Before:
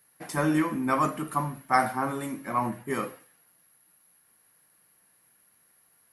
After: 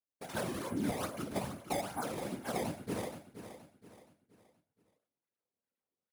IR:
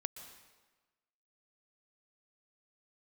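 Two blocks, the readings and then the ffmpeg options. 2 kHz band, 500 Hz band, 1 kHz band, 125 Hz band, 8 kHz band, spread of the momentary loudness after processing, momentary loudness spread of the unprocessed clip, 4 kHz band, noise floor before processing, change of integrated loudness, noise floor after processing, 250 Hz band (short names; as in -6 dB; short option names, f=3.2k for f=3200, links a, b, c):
-12.0 dB, -6.0 dB, -14.0 dB, -8.5 dB, -3.5 dB, 15 LU, 8 LU, -1.0 dB, -65 dBFS, -10.0 dB, under -85 dBFS, -9.5 dB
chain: -filter_complex "[0:a]equalizer=f=6.7k:t=o:w=0.75:g=-13.5,aecho=1:1:1.4:0.57,areverse,acompressor=mode=upward:threshold=-46dB:ratio=2.5,areverse,acrusher=samples=18:mix=1:aa=0.000001:lfo=1:lforange=28.8:lforate=2.4,acompressor=threshold=-29dB:ratio=6,equalizer=f=250:t=o:w=0.33:g=6,equalizer=f=500:t=o:w=0.33:g=7,equalizer=f=10k:t=o:w=0.33:g=9,afftfilt=real='hypot(re,im)*cos(2*PI*random(0))':imag='hypot(re,im)*sin(2*PI*random(1))':win_size=512:overlap=0.75,highpass=86,agate=range=-37dB:threshold=-49dB:ratio=16:detection=peak,asplit=2[a][b];[b]aecho=0:1:473|946|1419|1892:0.266|0.101|0.0384|0.0146[c];[a][c]amix=inputs=2:normalize=0"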